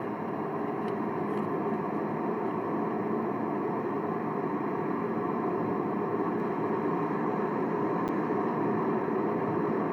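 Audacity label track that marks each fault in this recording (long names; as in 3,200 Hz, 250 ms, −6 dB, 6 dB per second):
8.080000	8.090000	drop-out 8.2 ms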